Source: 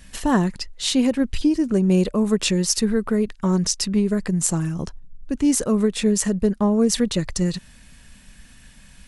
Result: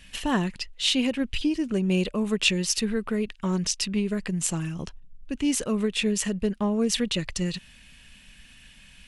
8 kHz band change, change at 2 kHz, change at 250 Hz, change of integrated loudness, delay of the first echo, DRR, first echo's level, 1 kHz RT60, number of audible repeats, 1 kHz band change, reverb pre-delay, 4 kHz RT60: -5.0 dB, +1.5 dB, -6.5 dB, -5.0 dB, none, none, none, none, none, -5.5 dB, none, none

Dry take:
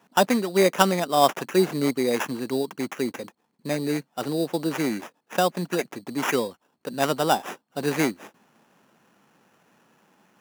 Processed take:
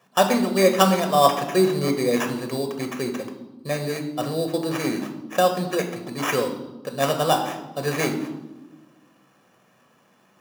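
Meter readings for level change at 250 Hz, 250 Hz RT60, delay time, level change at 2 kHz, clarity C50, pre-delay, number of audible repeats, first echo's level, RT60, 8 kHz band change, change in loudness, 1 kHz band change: +1.5 dB, 1.7 s, none, +0.5 dB, 9.0 dB, 5 ms, none, none, 1.1 s, +2.0 dB, +2.0 dB, +2.5 dB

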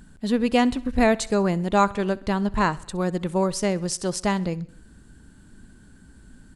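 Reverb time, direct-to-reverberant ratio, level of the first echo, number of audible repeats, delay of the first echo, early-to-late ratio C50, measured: none, none, -22.0 dB, 3, 65 ms, none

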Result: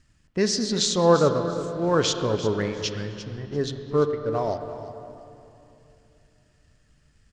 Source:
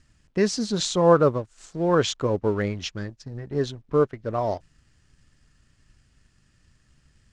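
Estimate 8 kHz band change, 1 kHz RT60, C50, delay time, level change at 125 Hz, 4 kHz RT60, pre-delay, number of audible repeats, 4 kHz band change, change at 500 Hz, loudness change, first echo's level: +4.0 dB, 2.8 s, 7.5 dB, 0.344 s, -0.5 dB, 2.2 s, 33 ms, 2, +4.0 dB, -0.5 dB, 0.0 dB, -14.0 dB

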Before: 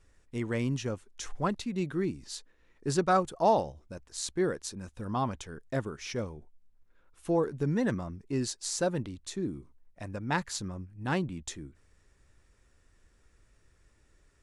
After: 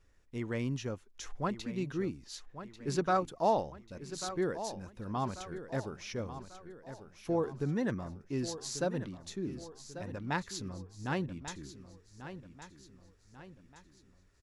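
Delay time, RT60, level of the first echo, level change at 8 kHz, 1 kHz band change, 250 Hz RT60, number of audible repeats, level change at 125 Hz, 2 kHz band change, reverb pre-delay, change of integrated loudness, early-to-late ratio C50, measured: 1.141 s, none, -12.0 dB, -6.0 dB, -3.5 dB, none, 4, -3.5 dB, -3.5 dB, none, -4.0 dB, none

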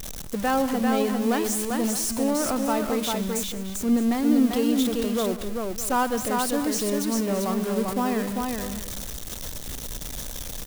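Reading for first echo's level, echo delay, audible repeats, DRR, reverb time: -17.0 dB, 0.127 s, 4, none, none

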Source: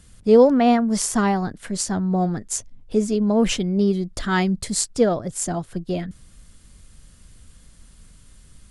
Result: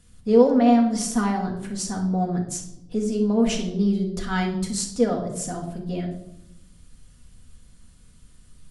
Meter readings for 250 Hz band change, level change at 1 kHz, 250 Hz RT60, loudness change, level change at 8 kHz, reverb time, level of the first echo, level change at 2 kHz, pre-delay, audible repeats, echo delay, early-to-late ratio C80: -1.0 dB, -2.5 dB, 1.3 s, -2.5 dB, -5.0 dB, 0.80 s, none, -4.5 dB, 4 ms, none, none, 11.0 dB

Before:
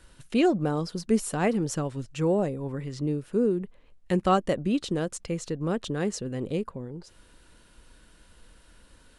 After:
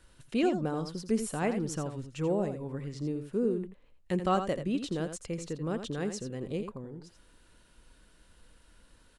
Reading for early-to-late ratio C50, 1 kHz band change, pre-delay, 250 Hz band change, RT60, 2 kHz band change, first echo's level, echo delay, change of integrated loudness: none, -5.0 dB, none, -5.0 dB, none, -5.0 dB, -9.0 dB, 84 ms, -5.0 dB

